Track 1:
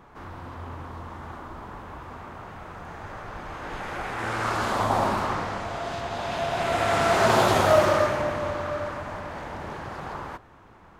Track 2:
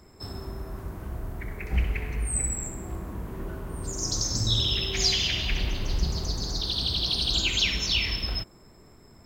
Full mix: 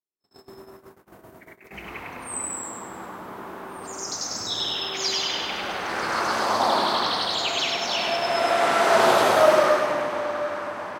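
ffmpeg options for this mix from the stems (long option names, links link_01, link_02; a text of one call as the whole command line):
ffmpeg -i stem1.wav -i stem2.wav -filter_complex "[0:a]bandreject=frequency=6900:width=16,adelay=1700,volume=1.5dB,asplit=2[link_01][link_02];[link_02]volume=-7dB[link_03];[1:a]volume=-3dB,asplit=2[link_04][link_05];[link_05]volume=-3.5dB[link_06];[link_03][link_06]amix=inputs=2:normalize=0,aecho=0:1:101|202|303|404|505|606:1|0.44|0.194|0.0852|0.0375|0.0165[link_07];[link_01][link_04][link_07]amix=inputs=3:normalize=0,agate=range=-45dB:threshold=-35dB:ratio=16:detection=peak,highpass=280" out.wav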